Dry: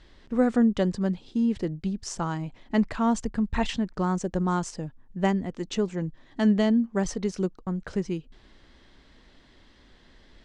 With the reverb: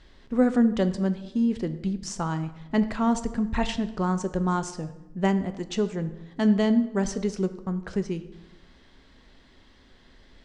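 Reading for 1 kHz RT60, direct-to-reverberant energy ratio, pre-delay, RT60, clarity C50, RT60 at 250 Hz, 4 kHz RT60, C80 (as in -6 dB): 0.90 s, 10.0 dB, 3 ms, 0.95 s, 13.0 dB, 1.2 s, 0.70 s, 15.5 dB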